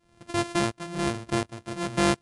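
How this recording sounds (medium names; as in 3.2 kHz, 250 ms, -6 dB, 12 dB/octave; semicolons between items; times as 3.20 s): a buzz of ramps at a fixed pitch in blocks of 128 samples; tremolo saw up 1.4 Hz, depth 90%; MP3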